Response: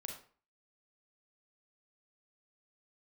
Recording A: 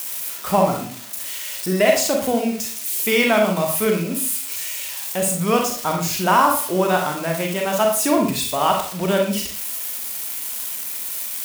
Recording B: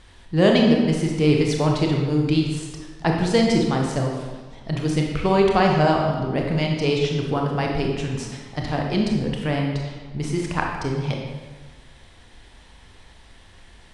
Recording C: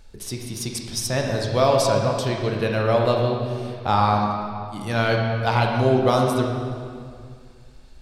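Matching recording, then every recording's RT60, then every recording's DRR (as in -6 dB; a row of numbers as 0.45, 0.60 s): A; 0.45, 1.4, 2.2 s; 1.5, 0.0, 0.5 dB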